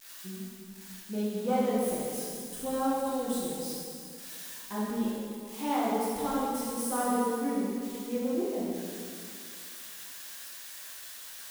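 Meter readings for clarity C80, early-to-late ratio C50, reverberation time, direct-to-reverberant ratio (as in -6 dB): -0.5 dB, -2.5 dB, 2.3 s, -8.0 dB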